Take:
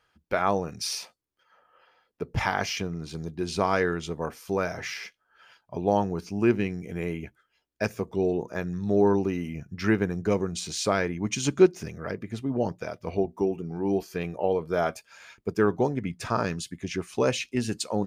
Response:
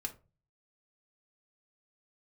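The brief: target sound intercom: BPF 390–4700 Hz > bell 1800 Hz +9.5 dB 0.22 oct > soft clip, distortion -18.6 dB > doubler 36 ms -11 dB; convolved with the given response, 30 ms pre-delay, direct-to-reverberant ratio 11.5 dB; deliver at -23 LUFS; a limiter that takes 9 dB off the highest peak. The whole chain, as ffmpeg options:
-filter_complex "[0:a]alimiter=limit=-15.5dB:level=0:latency=1,asplit=2[a][b];[1:a]atrim=start_sample=2205,adelay=30[c];[b][c]afir=irnorm=-1:irlink=0,volume=-11dB[d];[a][d]amix=inputs=2:normalize=0,highpass=390,lowpass=4.7k,equalizer=f=1.8k:t=o:w=0.22:g=9.5,asoftclip=threshold=-19.5dB,asplit=2[e][f];[f]adelay=36,volume=-11dB[g];[e][g]amix=inputs=2:normalize=0,volume=10dB"

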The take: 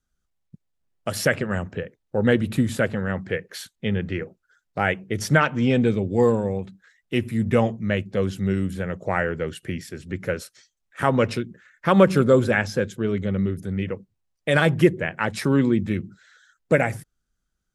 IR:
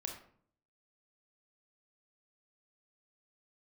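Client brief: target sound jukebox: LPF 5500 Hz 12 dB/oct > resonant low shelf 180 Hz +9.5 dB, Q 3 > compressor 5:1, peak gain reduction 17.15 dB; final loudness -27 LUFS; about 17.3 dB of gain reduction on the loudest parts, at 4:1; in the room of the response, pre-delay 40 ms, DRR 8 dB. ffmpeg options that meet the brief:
-filter_complex "[0:a]acompressor=threshold=-32dB:ratio=4,asplit=2[a][b];[1:a]atrim=start_sample=2205,adelay=40[c];[b][c]afir=irnorm=-1:irlink=0,volume=-7dB[d];[a][d]amix=inputs=2:normalize=0,lowpass=5.5k,lowshelf=f=180:t=q:w=3:g=9.5,acompressor=threshold=-34dB:ratio=5,volume=11dB"

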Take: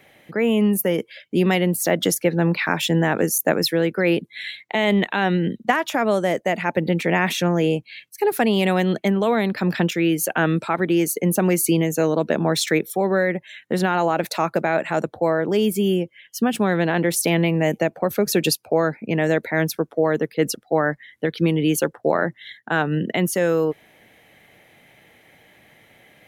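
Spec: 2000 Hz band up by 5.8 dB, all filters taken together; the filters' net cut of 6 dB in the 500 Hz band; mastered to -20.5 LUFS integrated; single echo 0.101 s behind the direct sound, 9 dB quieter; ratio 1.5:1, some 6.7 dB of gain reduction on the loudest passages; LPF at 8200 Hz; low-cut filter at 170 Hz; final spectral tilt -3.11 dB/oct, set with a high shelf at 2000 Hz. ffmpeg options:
-af "highpass=170,lowpass=8.2k,equalizer=f=500:t=o:g=-8.5,highshelf=f=2k:g=8,equalizer=f=2k:t=o:g=3,acompressor=threshold=-32dB:ratio=1.5,aecho=1:1:101:0.355,volume=5.5dB"

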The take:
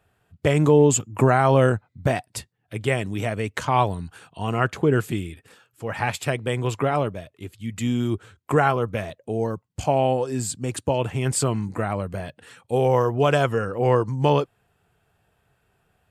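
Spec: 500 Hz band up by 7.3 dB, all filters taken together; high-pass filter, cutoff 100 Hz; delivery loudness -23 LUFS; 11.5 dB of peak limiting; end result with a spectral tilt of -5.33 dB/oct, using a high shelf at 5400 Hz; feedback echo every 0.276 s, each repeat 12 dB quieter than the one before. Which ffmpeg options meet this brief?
-af "highpass=100,equalizer=f=500:t=o:g=8.5,highshelf=f=5.4k:g=4.5,alimiter=limit=-11.5dB:level=0:latency=1,aecho=1:1:276|552|828:0.251|0.0628|0.0157"

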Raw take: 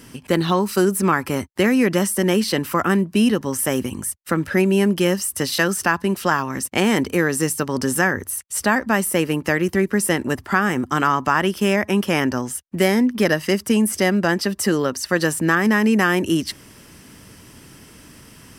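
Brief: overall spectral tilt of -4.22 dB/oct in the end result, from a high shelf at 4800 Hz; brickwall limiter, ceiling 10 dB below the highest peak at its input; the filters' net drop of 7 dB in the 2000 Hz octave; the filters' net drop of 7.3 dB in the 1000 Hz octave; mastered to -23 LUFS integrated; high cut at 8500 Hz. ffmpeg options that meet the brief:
-af "lowpass=8.5k,equalizer=f=1k:t=o:g=-8,equalizer=f=2k:t=o:g=-7,highshelf=f=4.8k:g=7,volume=2.5dB,alimiter=limit=-13.5dB:level=0:latency=1"

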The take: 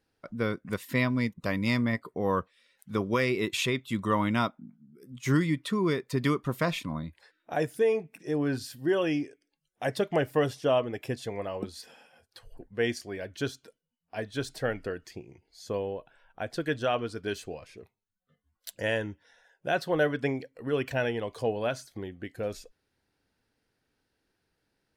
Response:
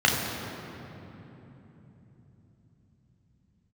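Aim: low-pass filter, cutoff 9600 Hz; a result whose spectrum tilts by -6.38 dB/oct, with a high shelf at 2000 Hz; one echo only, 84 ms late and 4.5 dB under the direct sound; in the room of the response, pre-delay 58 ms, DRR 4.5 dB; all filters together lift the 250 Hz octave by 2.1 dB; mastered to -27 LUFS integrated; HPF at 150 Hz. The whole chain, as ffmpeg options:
-filter_complex "[0:a]highpass=150,lowpass=9.6k,equalizer=f=250:t=o:g=3.5,highshelf=f=2k:g=-8,aecho=1:1:84:0.596,asplit=2[a][b];[1:a]atrim=start_sample=2205,adelay=58[c];[b][c]afir=irnorm=-1:irlink=0,volume=-22.5dB[d];[a][d]amix=inputs=2:normalize=0,volume=0.5dB"

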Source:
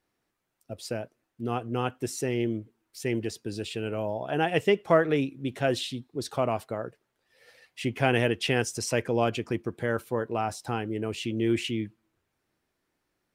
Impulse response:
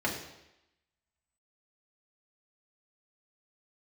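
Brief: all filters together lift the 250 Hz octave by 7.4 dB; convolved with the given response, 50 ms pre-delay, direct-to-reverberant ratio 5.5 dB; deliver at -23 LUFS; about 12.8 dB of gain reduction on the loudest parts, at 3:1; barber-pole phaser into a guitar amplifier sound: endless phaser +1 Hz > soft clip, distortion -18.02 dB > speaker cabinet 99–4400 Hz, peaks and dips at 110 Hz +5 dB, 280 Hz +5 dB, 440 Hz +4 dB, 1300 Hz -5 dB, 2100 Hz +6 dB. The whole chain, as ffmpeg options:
-filter_complex "[0:a]equalizer=f=250:t=o:g=6,acompressor=threshold=-33dB:ratio=3,asplit=2[a][b];[1:a]atrim=start_sample=2205,adelay=50[c];[b][c]afir=irnorm=-1:irlink=0,volume=-14.5dB[d];[a][d]amix=inputs=2:normalize=0,asplit=2[e][f];[f]afreqshift=1[g];[e][g]amix=inputs=2:normalize=1,asoftclip=threshold=-28.5dB,highpass=99,equalizer=f=110:t=q:w=4:g=5,equalizer=f=280:t=q:w=4:g=5,equalizer=f=440:t=q:w=4:g=4,equalizer=f=1.3k:t=q:w=4:g=-5,equalizer=f=2.1k:t=q:w=4:g=6,lowpass=f=4.4k:w=0.5412,lowpass=f=4.4k:w=1.3066,volume=14dB"

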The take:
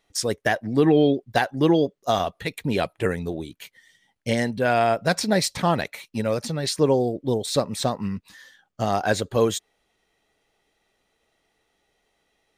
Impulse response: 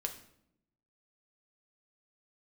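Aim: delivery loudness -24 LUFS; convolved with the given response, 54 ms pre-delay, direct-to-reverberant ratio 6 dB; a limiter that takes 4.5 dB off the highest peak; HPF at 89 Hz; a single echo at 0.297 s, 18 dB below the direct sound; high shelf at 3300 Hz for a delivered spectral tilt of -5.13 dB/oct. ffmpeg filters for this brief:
-filter_complex "[0:a]highpass=89,highshelf=f=3.3k:g=-7,alimiter=limit=-12dB:level=0:latency=1,aecho=1:1:297:0.126,asplit=2[a][b];[1:a]atrim=start_sample=2205,adelay=54[c];[b][c]afir=irnorm=-1:irlink=0,volume=-6.5dB[d];[a][d]amix=inputs=2:normalize=0,volume=0.5dB"

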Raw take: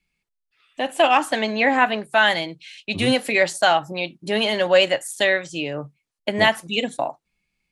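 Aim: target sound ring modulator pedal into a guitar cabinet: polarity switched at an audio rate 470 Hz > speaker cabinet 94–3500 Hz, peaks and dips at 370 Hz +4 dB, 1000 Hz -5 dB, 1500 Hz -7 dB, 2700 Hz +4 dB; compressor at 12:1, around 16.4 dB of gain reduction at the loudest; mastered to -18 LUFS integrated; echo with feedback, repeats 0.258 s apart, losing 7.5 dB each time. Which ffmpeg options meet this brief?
-af "acompressor=threshold=-28dB:ratio=12,aecho=1:1:258|516|774|1032|1290:0.422|0.177|0.0744|0.0312|0.0131,aeval=exprs='val(0)*sgn(sin(2*PI*470*n/s))':c=same,highpass=94,equalizer=f=370:t=q:w=4:g=4,equalizer=f=1k:t=q:w=4:g=-5,equalizer=f=1.5k:t=q:w=4:g=-7,equalizer=f=2.7k:t=q:w=4:g=4,lowpass=f=3.5k:w=0.5412,lowpass=f=3.5k:w=1.3066,volume=15.5dB"

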